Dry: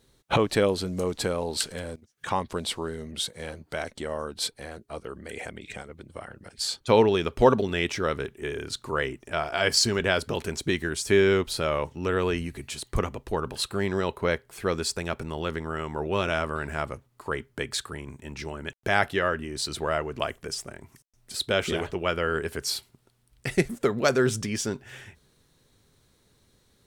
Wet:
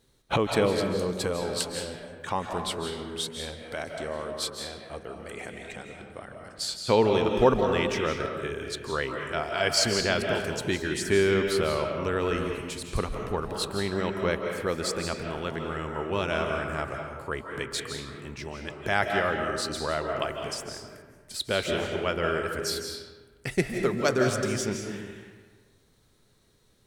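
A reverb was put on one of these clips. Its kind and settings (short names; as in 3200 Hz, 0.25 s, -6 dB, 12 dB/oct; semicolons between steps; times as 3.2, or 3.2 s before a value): digital reverb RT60 1.4 s, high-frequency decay 0.6×, pre-delay 0.12 s, DRR 3 dB; gain -2.5 dB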